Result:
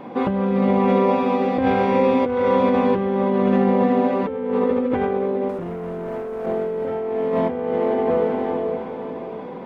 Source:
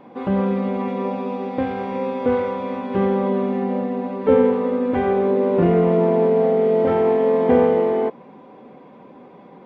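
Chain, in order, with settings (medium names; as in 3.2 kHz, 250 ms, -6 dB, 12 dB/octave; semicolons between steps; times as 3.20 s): 5.49–6.46 s: waveshaping leveller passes 2; echo that smears into a reverb 481 ms, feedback 41%, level -11 dB; compressor with a negative ratio -24 dBFS, ratio -1; trim +3 dB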